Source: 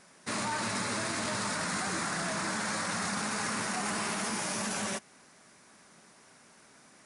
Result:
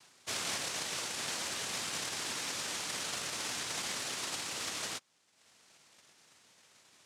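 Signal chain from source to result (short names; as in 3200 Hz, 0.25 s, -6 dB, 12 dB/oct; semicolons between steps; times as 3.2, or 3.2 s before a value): reverb removal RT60 0.99 s; noise vocoder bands 1; gain -2 dB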